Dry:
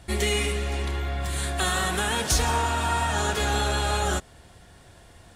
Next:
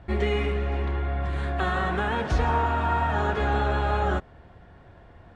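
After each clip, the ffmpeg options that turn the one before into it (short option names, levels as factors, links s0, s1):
-af "lowpass=1700,volume=1.19"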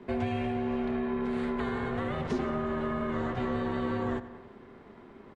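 -filter_complex "[0:a]aeval=exprs='val(0)*sin(2*PI*310*n/s)':c=same,asplit=2[s0][s1];[s1]adelay=91,lowpass=f=4200:p=1,volume=0.141,asplit=2[s2][s3];[s3]adelay=91,lowpass=f=4200:p=1,volume=0.5,asplit=2[s4][s5];[s5]adelay=91,lowpass=f=4200:p=1,volume=0.5,asplit=2[s6][s7];[s7]adelay=91,lowpass=f=4200:p=1,volume=0.5[s8];[s0][s2][s4][s6][s8]amix=inputs=5:normalize=0,acrossover=split=92|400[s9][s10][s11];[s9]acompressor=threshold=0.00562:ratio=4[s12];[s10]acompressor=threshold=0.0251:ratio=4[s13];[s11]acompressor=threshold=0.0126:ratio=4[s14];[s12][s13][s14]amix=inputs=3:normalize=0,volume=1.19"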